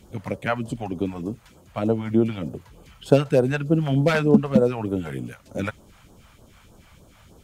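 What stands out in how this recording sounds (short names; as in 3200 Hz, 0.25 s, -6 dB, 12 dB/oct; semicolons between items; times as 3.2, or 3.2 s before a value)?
phasing stages 2, 3.3 Hz, lowest notch 300–2200 Hz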